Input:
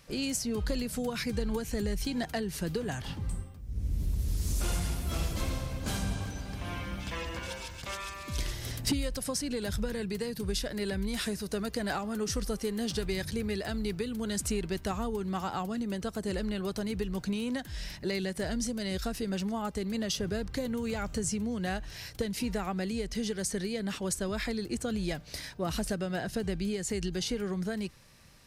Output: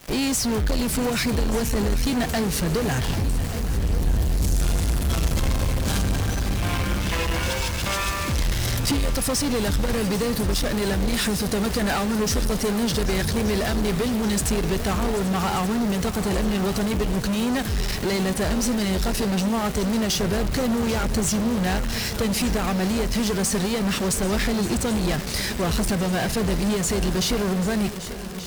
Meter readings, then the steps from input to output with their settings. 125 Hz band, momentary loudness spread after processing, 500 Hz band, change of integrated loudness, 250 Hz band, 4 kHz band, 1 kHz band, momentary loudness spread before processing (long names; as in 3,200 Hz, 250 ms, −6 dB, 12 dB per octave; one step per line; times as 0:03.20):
+11.5 dB, 2 LU, +9.0 dB, +10.0 dB, +10.0 dB, +10.0 dB, +11.5 dB, 5 LU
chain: low-shelf EQ 80 Hz +7 dB
background noise pink −54 dBFS
in parallel at −9 dB: fuzz pedal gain 48 dB, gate −47 dBFS
on the sum: echo machine with several playback heads 393 ms, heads second and third, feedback 65%, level −15 dB
level −2 dB